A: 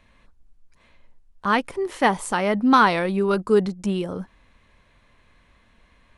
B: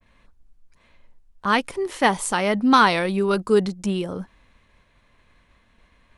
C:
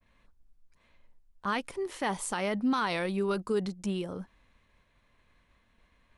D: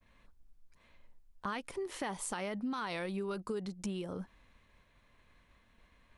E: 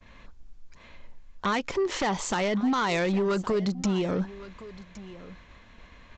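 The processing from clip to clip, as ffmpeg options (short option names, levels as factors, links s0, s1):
-af "agate=range=0.0224:threshold=0.00178:ratio=3:detection=peak,adynamicequalizer=threshold=0.0251:dfrequency=2400:dqfactor=0.7:tfrequency=2400:tqfactor=0.7:attack=5:release=100:ratio=0.375:range=3:mode=boostabove:tftype=highshelf"
-af "alimiter=limit=0.237:level=0:latency=1:release=43,volume=0.398"
-af "acompressor=threshold=0.0141:ratio=4,volume=1.12"
-af "aresample=16000,aeval=exprs='0.0668*sin(PI/2*2.51*val(0)/0.0668)':c=same,aresample=44100,aecho=1:1:1115:0.133,volume=1.33"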